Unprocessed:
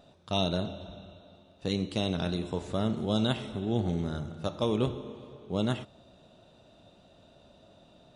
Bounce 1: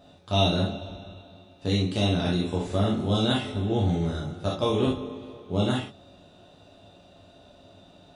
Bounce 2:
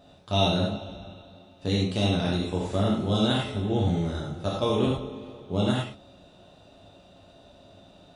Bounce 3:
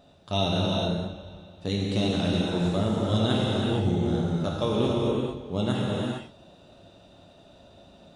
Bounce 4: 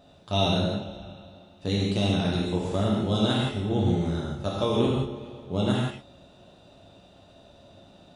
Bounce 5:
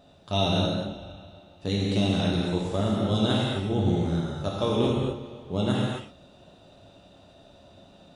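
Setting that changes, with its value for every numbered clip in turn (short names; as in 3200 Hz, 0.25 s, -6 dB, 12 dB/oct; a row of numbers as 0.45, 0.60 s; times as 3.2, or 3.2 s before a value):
non-linear reverb, gate: 90, 130, 490, 200, 290 ms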